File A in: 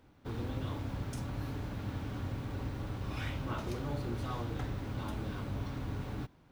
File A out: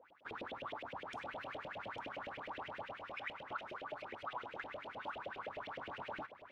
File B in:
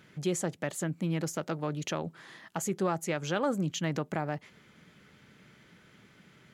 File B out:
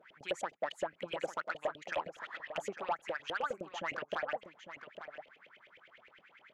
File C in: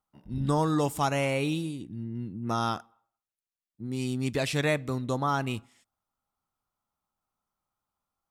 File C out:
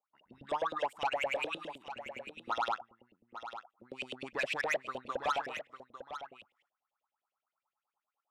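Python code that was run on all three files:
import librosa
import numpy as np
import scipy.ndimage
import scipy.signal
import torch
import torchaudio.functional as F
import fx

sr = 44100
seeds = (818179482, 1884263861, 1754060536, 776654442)

y = fx.filter_lfo_bandpass(x, sr, shape='saw_up', hz=9.7, low_hz=500.0, high_hz=3200.0, q=7.0)
y = fx.hpss(y, sr, part='harmonic', gain_db=-9)
y = fx.rider(y, sr, range_db=4, speed_s=0.5)
y = 10.0 ** (-37.5 / 20.0) * np.tanh(y / 10.0 ** (-37.5 / 20.0))
y = y + 10.0 ** (-11.0 / 20.0) * np.pad(y, (int(850 * sr / 1000.0), 0))[:len(y)]
y = y * librosa.db_to_amplitude(11.5)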